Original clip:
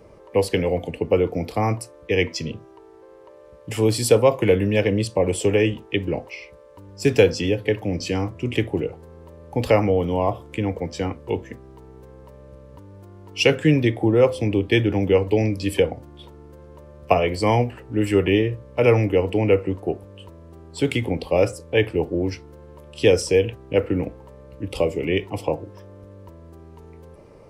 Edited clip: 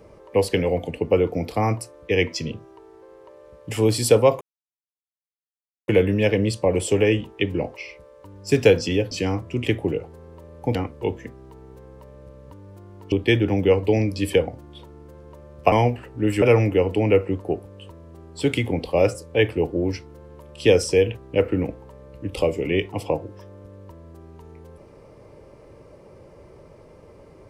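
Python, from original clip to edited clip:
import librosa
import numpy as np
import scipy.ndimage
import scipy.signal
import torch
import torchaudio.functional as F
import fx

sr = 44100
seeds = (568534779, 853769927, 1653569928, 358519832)

y = fx.edit(x, sr, fx.insert_silence(at_s=4.41, length_s=1.47),
    fx.cut(start_s=7.64, length_s=0.36),
    fx.cut(start_s=9.64, length_s=1.37),
    fx.cut(start_s=13.38, length_s=1.18),
    fx.cut(start_s=17.16, length_s=0.3),
    fx.cut(start_s=18.16, length_s=0.64), tone=tone)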